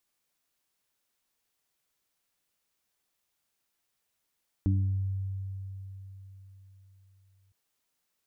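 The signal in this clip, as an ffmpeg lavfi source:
ffmpeg -f lavfi -i "aevalsrc='0.0794*pow(10,-3*t/4.09)*sin(2*PI*96.5*t)+0.0376*pow(10,-3*t/0.75)*sin(2*PI*193*t)+0.0376*pow(10,-3*t/0.55)*sin(2*PI*289.5*t)':duration=2.86:sample_rate=44100" out.wav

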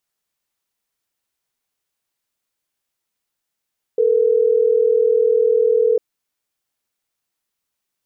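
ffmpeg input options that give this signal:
ffmpeg -f lavfi -i "aevalsrc='0.178*(sin(2*PI*440*t)+sin(2*PI*480*t))*clip(min(mod(t,6),2-mod(t,6))/0.005,0,1)':duration=3.12:sample_rate=44100" out.wav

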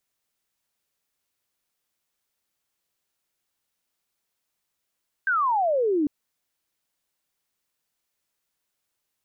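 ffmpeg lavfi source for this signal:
ffmpeg -f lavfi -i "aevalsrc='0.106*clip(t/0.002,0,1)*clip((0.8-t)/0.002,0,1)*sin(2*PI*1600*0.8/log(280/1600)*(exp(log(280/1600)*t/0.8)-1))':duration=0.8:sample_rate=44100" out.wav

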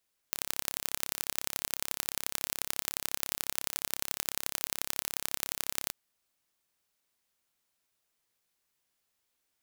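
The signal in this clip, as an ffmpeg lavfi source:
ffmpeg -f lavfi -i "aevalsrc='0.75*eq(mod(n,1293),0)*(0.5+0.5*eq(mod(n,3879),0))':duration=5.6:sample_rate=44100" out.wav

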